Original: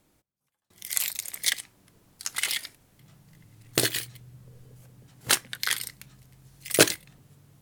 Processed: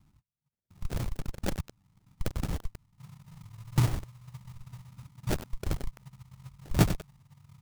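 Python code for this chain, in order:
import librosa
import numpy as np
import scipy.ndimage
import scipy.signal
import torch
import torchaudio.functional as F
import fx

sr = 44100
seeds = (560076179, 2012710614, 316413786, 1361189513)

p1 = fx.schmitt(x, sr, flips_db=-24.5)
p2 = x + F.gain(torch.from_numpy(p1), -3.0).numpy()
p3 = scipy.signal.sosfilt(scipy.signal.cheby1(2, 1.0, [150.0, 7100.0], 'bandstop', fs=sr, output='sos'), p2)
p4 = fx.air_absorb(p3, sr, metres=140.0)
p5 = fx.spec_gate(p4, sr, threshold_db=-25, keep='strong')
p6 = fx.dereverb_blind(p5, sr, rt60_s=1.3)
p7 = fx.sample_hold(p6, sr, seeds[0], rate_hz=1100.0, jitter_pct=20)
p8 = fx.bass_treble(p7, sr, bass_db=3, treble_db=5)
p9 = fx.echo_crushed(p8, sr, ms=95, feedback_pct=35, bits=6, wet_db=-10)
y = F.gain(torch.from_numpy(p9), 7.5).numpy()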